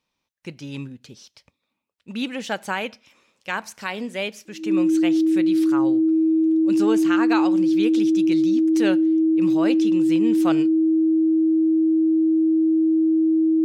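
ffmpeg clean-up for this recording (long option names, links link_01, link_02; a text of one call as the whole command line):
ffmpeg -i in.wav -af "bandreject=frequency=320:width=30" out.wav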